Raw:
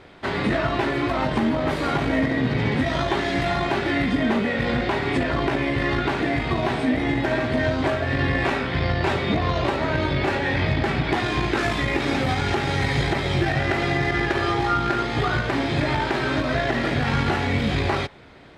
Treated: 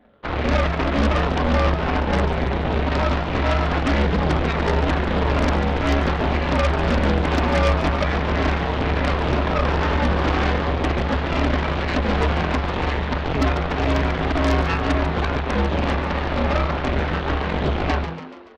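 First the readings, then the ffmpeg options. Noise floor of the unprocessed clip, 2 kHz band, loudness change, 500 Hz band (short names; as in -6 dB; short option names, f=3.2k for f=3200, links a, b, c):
-27 dBFS, -1.0 dB, +1.5 dB, +1.5 dB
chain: -filter_complex "[0:a]afftfilt=real='re*pow(10,14/40*sin(2*PI*(0.77*log(max(b,1)*sr/1024/100)/log(2)-(-2)*(pts-256)/sr)))':imag='im*pow(10,14/40*sin(2*PI*(0.77*log(max(b,1)*sr/1024/100)/log(2)-(-2)*(pts-256)/sr)))':win_size=1024:overlap=0.75,aecho=1:1:6.2:0.46,dynaudnorm=f=870:g=9:m=10dB,alimiter=limit=-9.5dB:level=0:latency=1:release=363,bandpass=f=440:t=q:w=0.74:csg=0,aresample=8000,acrusher=bits=4:mode=log:mix=0:aa=0.000001,aresample=44100,aeval=exprs='0.299*(cos(1*acos(clip(val(0)/0.299,-1,1)))-cos(1*PI/2))+0.00188*(cos(3*acos(clip(val(0)/0.299,-1,1)))-cos(3*PI/2))+0.00422*(cos(4*acos(clip(val(0)/0.299,-1,1)))-cos(4*PI/2))+0.133*(cos(6*acos(clip(val(0)/0.299,-1,1)))-cos(6*PI/2))+0.0211*(cos(7*acos(clip(val(0)/0.299,-1,1)))-cos(7*PI/2))':c=same,afreqshift=-72,asplit=2[a][b];[b]asplit=5[c][d][e][f][g];[c]adelay=143,afreqshift=93,volume=-10.5dB[h];[d]adelay=286,afreqshift=186,volume=-16.7dB[i];[e]adelay=429,afreqshift=279,volume=-22.9dB[j];[f]adelay=572,afreqshift=372,volume=-29.1dB[k];[g]adelay=715,afreqshift=465,volume=-35.3dB[l];[h][i][j][k][l]amix=inputs=5:normalize=0[m];[a][m]amix=inputs=2:normalize=0,volume=-2.5dB"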